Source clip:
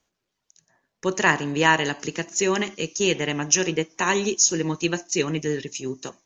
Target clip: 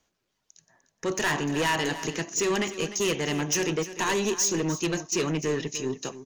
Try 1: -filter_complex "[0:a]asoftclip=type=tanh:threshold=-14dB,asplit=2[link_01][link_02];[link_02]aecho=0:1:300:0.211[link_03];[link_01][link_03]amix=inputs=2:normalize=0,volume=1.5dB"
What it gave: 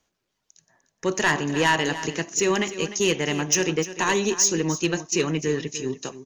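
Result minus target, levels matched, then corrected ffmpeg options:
soft clipping: distortion −6 dB
-filter_complex "[0:a]asoftclip=type=tanh:threshold=-23dB,asplit=2[link_01][link_02];[link_02]aecho=0:1:300:0.211[link_03];[link_01][link_03]amix=inputs=2:normalize=0,volume=1.5dB"

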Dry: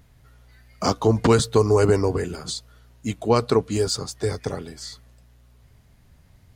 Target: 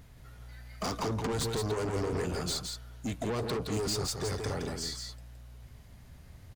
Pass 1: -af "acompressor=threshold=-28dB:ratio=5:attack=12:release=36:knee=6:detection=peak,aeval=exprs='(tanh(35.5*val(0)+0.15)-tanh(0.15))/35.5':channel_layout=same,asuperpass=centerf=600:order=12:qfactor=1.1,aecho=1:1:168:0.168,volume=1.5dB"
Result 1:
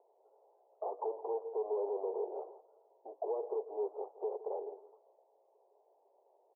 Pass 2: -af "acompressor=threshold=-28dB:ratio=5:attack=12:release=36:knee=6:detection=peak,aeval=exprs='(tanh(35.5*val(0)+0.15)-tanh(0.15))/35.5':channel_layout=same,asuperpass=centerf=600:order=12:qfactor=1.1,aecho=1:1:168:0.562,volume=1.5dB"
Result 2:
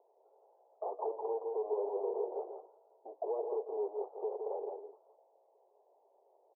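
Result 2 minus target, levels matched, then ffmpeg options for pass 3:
500 Hz band +4.0 dB
-af "acompressor=threshold=-28dB:ratio=5:attack=12:release=36:knee=6:detection=peak,aeval=exprs='(tanh(35.5*val(0)+0.15)-tanh(0.15))/35.5':channel_layout=same,aecho=1:1:168:0.562,volume=1.5dB"

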